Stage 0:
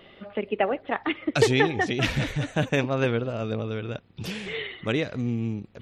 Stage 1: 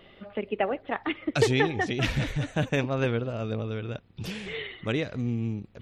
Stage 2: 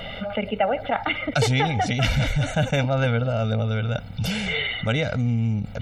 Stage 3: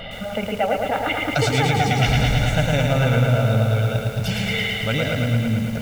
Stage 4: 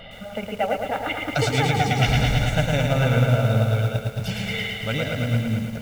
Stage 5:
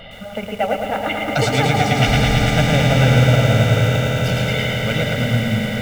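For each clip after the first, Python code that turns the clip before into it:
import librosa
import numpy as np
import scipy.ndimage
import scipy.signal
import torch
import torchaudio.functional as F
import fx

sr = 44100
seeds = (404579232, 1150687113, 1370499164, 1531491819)

y1 = fx.low_shelf(x, sr, hz=78.0, db=8.0)
y1 = F.gain(torch.from_numpy(y1), -3.0).numpy()
y2 = y1 + 0.95 * np.pad(y1, (int(1.4 * sr / 1000.0), 0))[:len(y1)]
y2 = fx.env_flatten(y2, sr, amount_pct=50)
y3 = fx.echo_stepped(y2, sr, ms=127, hz=150.0, octaves=1.4, feedback_pct=70, wet_db=-10)
y3 = fx.echo_crushed(y3, sr, ms=110, feedback_pct=80, bits=7, wet_db=-3.5)
y4 = fx.upward_expand(y3, sr, threshold_db=-29.0, expansion=1.5)
y5 = fx.echo_swell(y4, sr, ms=86, loudest=8, wet_db=-12.5)
y5 = F.gain(torch.from_numpy(y5), 3.5).numpy()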